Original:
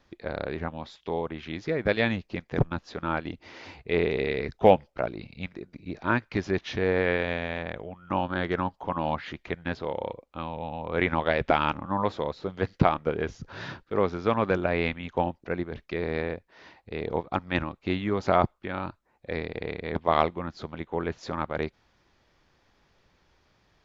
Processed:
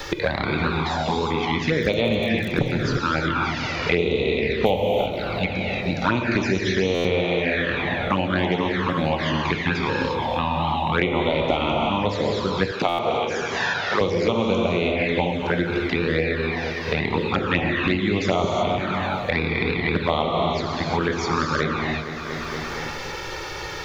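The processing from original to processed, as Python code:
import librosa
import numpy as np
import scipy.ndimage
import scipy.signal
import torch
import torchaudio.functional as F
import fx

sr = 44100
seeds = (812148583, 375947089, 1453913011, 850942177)

y = fx.rev_gated(x, sr, seeds[0], gate_ms=380, shape='flat', drr_db=-1.0)
y = fx.dmg_crackle(y, sr, seeds[1], per_s=33.0, level_db=-33.0, at=(1.76, 2.57), fade=0.02)
y = fx.high_shelf(y, sr, hz=2500.0, db=10.5)
y = fx.env_flanger(y, sr, rest_ms=2.3, full_db=-18.5)
y = fx.highpass(y, sr, hz=460.0, slope=12, at=(12.71, 14.01))
y = fx.echo_feedback(y, sr, ms=234, feedback_pct=53, wet_db=-17.0)
y = fx.buffer_glitch(y, sr, at_s=(6.94, 12.88), block=512, repeats=8)
y = fx.band_squash(y, sr, depth_pct=100)
y = y * librosa.db_to_amplitude(3.0)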